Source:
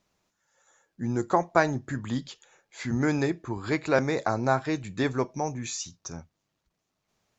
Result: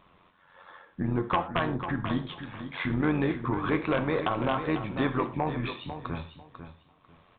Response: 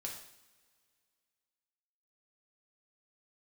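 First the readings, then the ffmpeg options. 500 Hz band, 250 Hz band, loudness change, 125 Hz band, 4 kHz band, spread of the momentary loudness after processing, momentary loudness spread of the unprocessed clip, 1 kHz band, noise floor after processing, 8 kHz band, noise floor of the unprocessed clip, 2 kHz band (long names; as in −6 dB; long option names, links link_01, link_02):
−3.0 dB, 0.0 dB, −1.5 dB, 0.0 dB, +0.5 dB, 12 LU, 12 LU, −1.0 dB, −63 dBFS, can't be measured, −80 dBFS, −2.0 dB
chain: -filter_complex "[0:a]equalizer=frequency=1100:width_type=o:width=0.31:gain=10.5,acompressor=threshold=-49dB:ratio=2,tremolo=f=90:d=0.667,flanger=delay=7.5:depth=4.5:regen=-88:speed=1.2:shape=sinusoidal,aeval=exprs='0.0355*sin(PI/2*2*val(0)/0.0355)':channel_layout=same,aecho=1:1:496|992|1488:0.316|0.0632|0.0126,asplit=2[link_01][link_02];[1:a]atrim=start_sample=2205,afade=type=out:start_time=0.17:duration=0.01,atrim=end_sample=7938[link_03];[link_02][link_03]afir=irnorm=-1:irlink=0,volume=-3dB[link_04];[link_01][link_04]amix=inputs=2:normalize=0,aresample=8000,aresample=44100,volume=8dB"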